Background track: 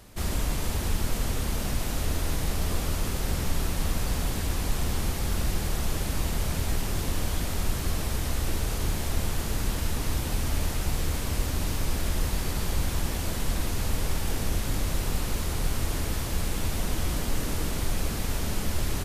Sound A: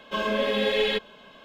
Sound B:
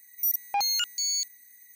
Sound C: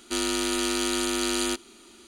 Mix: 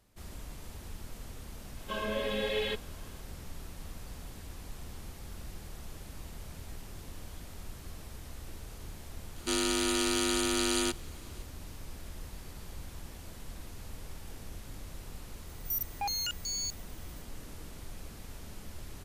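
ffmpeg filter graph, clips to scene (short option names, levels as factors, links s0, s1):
-filter_complex "[0:a]volume=0.141[s0];[1:a]atrim=end=1.44,asetpts=PTS-STARTPTS,volume=0.376,afade=t=in:d=0.004:c=hsin,afade=t=out:st=1.436:d=0.004:c=hsin,adelay=1770[s1];[3:a]atrim=end=2.07,asetpts=PTS-STARTPTS,volume=0.708,afade=t=in:d=0.004:c=hsin,afade=t=out:st=2.066:d=0.004:c=hsin,adelay=9360[s2];[2:a]atrim=end=1.75,asetpts=PTS-STARTPTS,volume=0.422,afade=t=in:d=0.004:c=hsin,afade=t=out:st=1.746:d=0.004:c=hsin,adelay=15470[s3];[s0][s1][s2][s3]amix=inputs=4:normalize=0"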